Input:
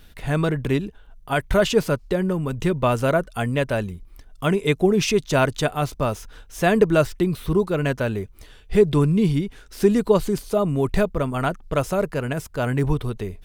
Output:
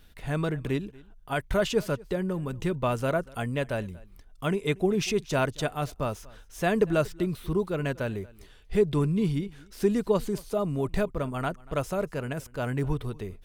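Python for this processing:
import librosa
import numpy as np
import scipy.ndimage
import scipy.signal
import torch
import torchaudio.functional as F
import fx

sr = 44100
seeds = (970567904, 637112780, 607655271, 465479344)

y = x + 10.0 ** (-23.0 / 20.0) * np.pad(x, (int(236 * sr / 1000.0), 0))[:len(x)]
y = y * librosa.db_to_amplitude(-7.0)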